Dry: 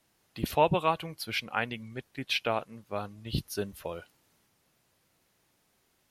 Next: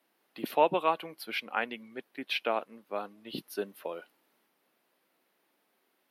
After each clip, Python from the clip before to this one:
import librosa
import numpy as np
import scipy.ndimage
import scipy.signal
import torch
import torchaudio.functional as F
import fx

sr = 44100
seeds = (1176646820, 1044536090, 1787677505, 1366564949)

y = scipy.signal.sosfilt(scipy.signal.butter(4, 240.0, 'highpass', fs=sr, output='sos'), x)
y = fx.peak_eq(y, sr, hz=6900.0, db=-13.0, octaves=1.1)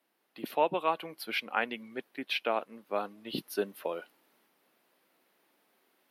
y = fx.rider(x, sr, range_db=3, speed_s=0.5)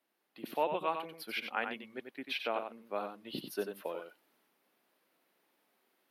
y = x + 10.0 ** (-7.0 / 20.0) * np.pad(x, (int(92 * sr / 1000.0), 0))[:len(x)]
y = y * 10.0 ** (-5.0 / 20.0)